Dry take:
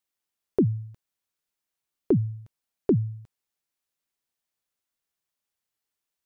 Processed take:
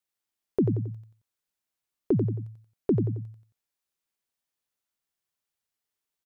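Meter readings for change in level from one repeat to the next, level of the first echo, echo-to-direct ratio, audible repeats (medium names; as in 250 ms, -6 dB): -8.0 dB, -5.5 dB, -5.0 dB, 3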